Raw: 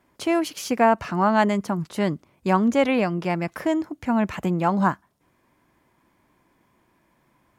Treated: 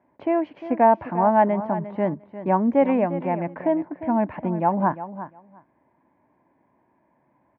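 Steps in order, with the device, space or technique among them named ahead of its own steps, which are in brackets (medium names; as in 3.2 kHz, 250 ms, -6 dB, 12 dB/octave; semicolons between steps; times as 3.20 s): bass cabinet (cabinet simulation 84–2000 Hz, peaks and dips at 270 Hz +5 dB, 610 Hz +7 dB, 880 Hz +7 dB, 1.3 kHz -9 dB); feedback delay 352 ms, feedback 15%, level -13 dB; trim -3 dB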